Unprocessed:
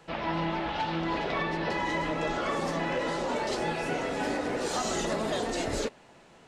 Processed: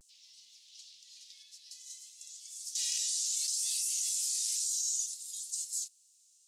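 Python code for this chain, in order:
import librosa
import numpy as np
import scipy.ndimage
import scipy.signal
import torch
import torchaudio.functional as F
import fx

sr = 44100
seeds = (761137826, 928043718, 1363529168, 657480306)

y = scipy.signal.sosfilt(scipy.signal.cheby2(4, 70, 1500.0, 'highpass', fs=sr, output='sos'), x)
y = fx.vibrato(y, sr, rate_hz=0.58, depth_cents=51.0)
y = fx.env_flatten(y, sr, amount_pct=100, at=(2.75, 4.81))
y = y * librosa.db_to_amplitude(8.5)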